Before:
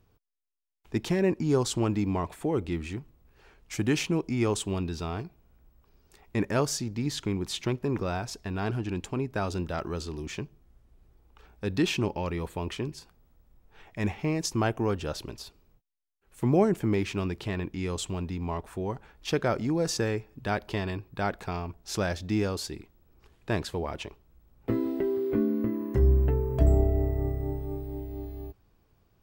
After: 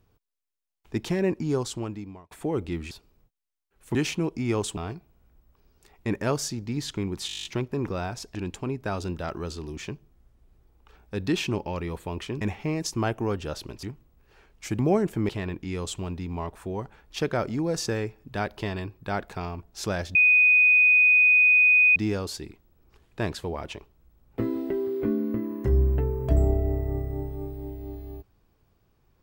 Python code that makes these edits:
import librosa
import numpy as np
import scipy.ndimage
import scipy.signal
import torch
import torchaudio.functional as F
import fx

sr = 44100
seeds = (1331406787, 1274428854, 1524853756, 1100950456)

y = fx.edit(x, sr, fx.fade_out_span(start_s=1.37, length_s=0.94),
    fx.swap(start_s=2.91, length_s=0.96, other_s=15.42, other_length_s=1.04),
    fx.cut(start_s=4.69, length_s=0.37),
    fx.stutter(start_s=7.56, slice_s=0.02, count=10),
    fx.cut(start_s=8.46, length_s=0.39),
    fx.cut(start_s=12.91, length_s=1.09),
    fx.cut(start_s=16.96, length_s=0.44),
    fx.insert_tone(at_s=22.26, length_s=1.81, hz=2490.0, db=-14.5), tone=tone)